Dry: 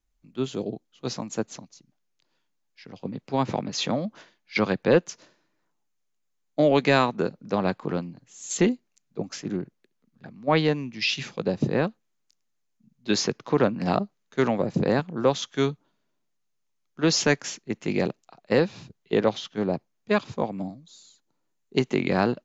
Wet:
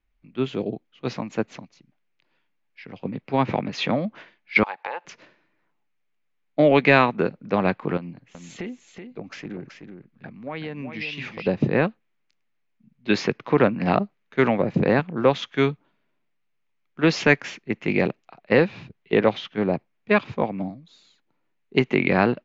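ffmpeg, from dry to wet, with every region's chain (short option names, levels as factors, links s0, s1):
-filter_complex "[0:a]asettb=1/sr,asplit=3[s0][s1][s2];[s0]atrim=end=4.634[s3];[s1]atrim=start=4.63:end=5.05,asetpts=PTS-STARTPTS,afade=t=in:d=0.004:c=qsin,afade=t=out:st=0.416:d=0.004:c=qsin,highpass=f=850:t=q:w=9.3,acompressor=threshold=0.0316:ratio=12:attack=3.2:release=140:knee=1:detection=peak[s4];[s2]atrim=start=5.046[s5];[s3][s4]acrossfade=d=0.004:c1=hsin:c2=qsin[s6];[s6][s5]acrossfade=d=0.004:c1=qsin:c2=hsin,asettb=1/sr,asplit=3[s7][s8][s9];[s7]atrim=end=7.974[s10];[s8]atrim=start=7.97:end=11.47,asetpts=PTS-STARTPTS,afade=t=in:d=0.004:c=qsin,afade=t=out:st=3.496:d=0.004:c=qsin,acompressor=threshold=0.0224:ratio=6:attack=3.2:release=140:knee=1:detection=peak,aecho=1:1:377:0.422,atrim=end_sample=154350[s11];[s9]atrim=start=11.466[s12];[s10][s11]acrossfade=d=0.004:c1=hsin:c2=qsin[s13];[s13][s12]acrossfade=d=0.004:c1=qsin:c2=hsin,lowpass=2900,equalizer=f=2300:w=1.7:g=7.5,volume=1.41"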